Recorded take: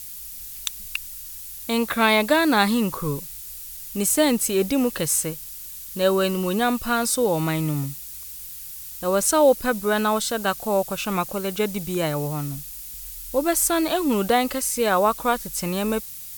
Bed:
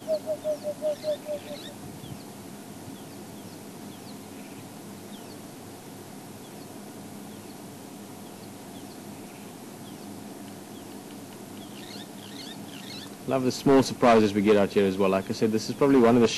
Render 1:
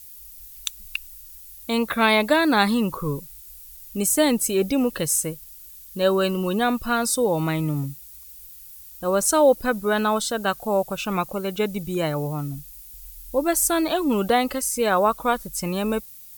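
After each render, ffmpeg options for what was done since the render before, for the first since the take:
-af "afftdn=nr=10:nf=-37"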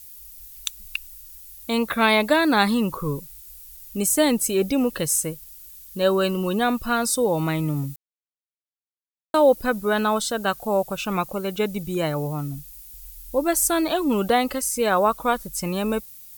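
-filter_complex "[0:a]asplit=3[a][b][c];[a]atrim=end=7.96,asetpts=PTS-STARTPTS,afade=t=out:st=7.956:d=0.004:c=hsin[d];[b]atrim=start=7.96:end=9.34,asetpts=PTS-STARTPTS,volume=0[e];[c]atrim=start=9.34,asetpts=PTS-STARTPTS,afade=t=in:d=0.004:c=hsin[f];[d][e][f]concat=n=3:v=0:a=1"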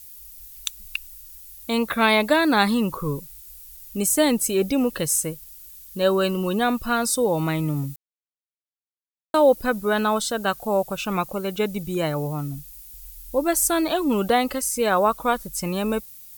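-af anull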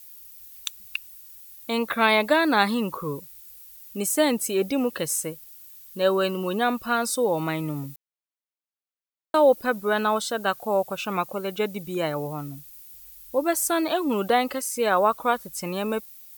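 -af "highpass=f=300:p=1,equalizer=f=9.2k:w=0.45:g=-5"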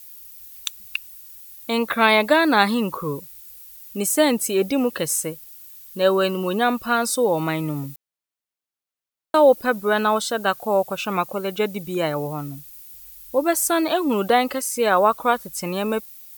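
-af "volume=3.5dB"

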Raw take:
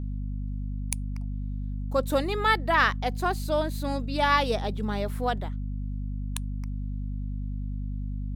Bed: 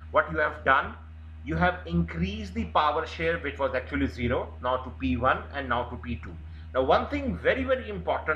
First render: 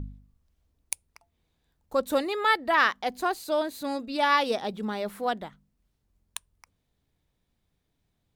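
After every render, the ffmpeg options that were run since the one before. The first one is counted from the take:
-af "bandreject=f=50:t=h:w=4,bandreject=f=100:t=h:w=4,bandreject=f=150:t=h:w=4,bandreject=f=200:t=h:w=4,bandreject=f=250:t=h:w=4"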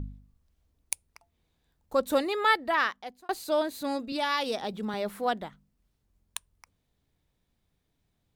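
-filter_complex "[0:a]asettb=1/sr,asplit=3[a][b][c];[a]atrim=end=4.124[d];[b]atrim=start=4.12:end=4.94,asetpts=PTS-STARTPTS,afade=t=in:d=0.004:c=qsin,afade=t=out:st=0.816:d=0.004:c=qsin,acrossover=split=120|3000[e][f][g];[f]acompressor=threshold=-30dB:ratio=2:attack=3.2:release=140:knee=2.83:detection=peak[h];[e][h][g]amix=inputs=3:normalize=0[i];[c]atrim=start=4.936[j];[d][i]acrossfade=d=0.004:c1=hsin:c2=qsin[k];[k][j]acrossfade=d=0.004:c1=qsin:c2=hsin,asplit=2[l][m];[l]atrim=end=3.29,asetpts=PTS-STARTPTS,afade=t=out:st=2.48:d=0.81[n];[m]atrim=start=3.29,asetpts=PTS-STARTPTS,afade=t=in:d=0.004:c=hsin[o];[n][o]concat=n=2:v=0:a=1"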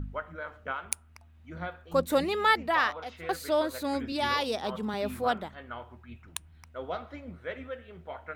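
-filter_complex "[1:a]volume=-13.5dB[a];[0:a][a]amix=inputs=2:normalize=0"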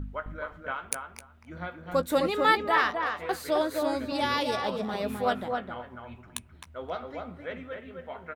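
-filter_complex "[0:a]asplit=2[a][b];[b]adelay=16,volume=-12dB[c];[a][c]amix=inputs=2:normalize=0,asplit=2[d][e];[e]adelay=261,lowpass=f=1.9k:p=1,volume=-3.5dB,asplit=2[f][g];[g]adelay=261,lowpass=f=1.9k:p=1,volume=0.16,asplit=2[h][i];[i]adelay=261,lowpass=f=1.9k:p=1,volume=0.16[j];[d][f][h][j]amix=inputs=4:normalize=0"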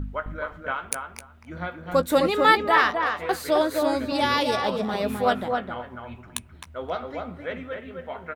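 -af "volume=5dB,alimiter=limit=-2dB:level=0:latency=1"

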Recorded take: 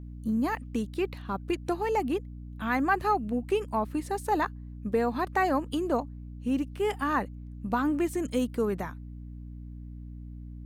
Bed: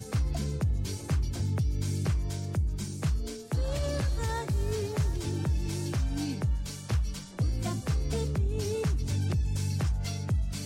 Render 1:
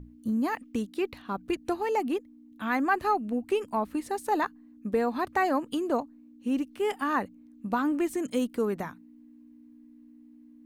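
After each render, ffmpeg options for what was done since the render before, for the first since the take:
-af "bandreject=f=60:t=h:w=6,bandreject=f=120:t=h:w=6,bandreject=f=180:t=h:w=6"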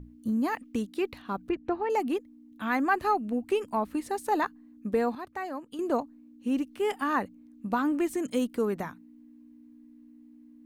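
-filter_complex "[0:a]asettb=1/sr,asplit=3[a][b][c];[a]atrim=end=1.494[d];[b]atrim=start=1.49:end=1.9,asetpts=PTS-STARTPTS,afade=t=in:d=0.004:c=qsin,afade=t=out:st=0.406:d=0.004:c=qsin,lowpass=2.1k[e];[c]atrim=start=1.896[f];[d][e]acrossfade=d=0.004:c1=hsin:c2=qsin[g];[g][f]acrossfade=d=0.004:c1=qsin:c2=hsin,asplit=3[h][i][j];[h]atrim=end=5.152[k];[i]atrim=start=5.148:end=5.792,asetpts=PTS-STARTPTS,volume=-10dB[l];[j]atrim=start=5.788[m];[k][l]acrossfade=d=0.004:c1=hsin:c2=hsin[n];[n][m]acrossfade=d=0.004:c1=hsin:c2=hsin"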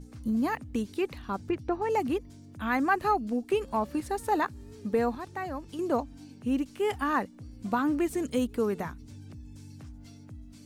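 -filter_complex "[1:a]volume=-18dB[a];[0:a][a]amix=inputs=2:normalize=0"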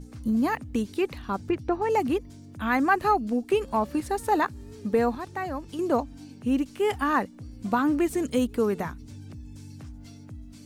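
-af "volume=3.5dB"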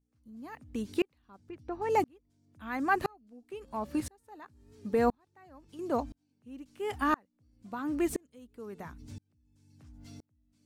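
-af "aeval=exprs='val(0)*pow(10,-37*if(lt(mod(-0.98*n/s,1),2*abs(-0.98)/1000),1-mod(-0.98*n/s,1)/(2*abs(-0.98)/1000),(mod(-0.98*n/s,1)-2*abs(-0.98)/1000)/(1-2*abs(-0.98)/1000))/20)':c=same"

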